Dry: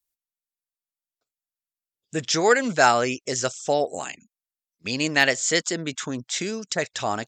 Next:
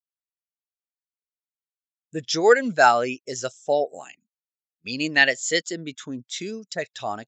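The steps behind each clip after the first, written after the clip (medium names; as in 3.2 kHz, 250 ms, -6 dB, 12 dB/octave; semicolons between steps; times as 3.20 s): dynamic bell 3.6 kHz, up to +5 dB, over -38 dBFS, Q 1; spectral contrast expander 1.5:1; trim -1 dB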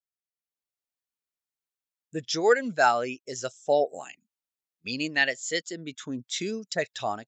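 level rider gain up to 8 dB; trim -7 dB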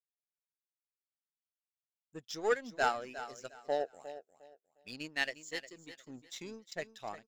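power-law waveshaper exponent 1.4; feedback delay 356 ms, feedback 25%, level -13 dB; trim -7 dB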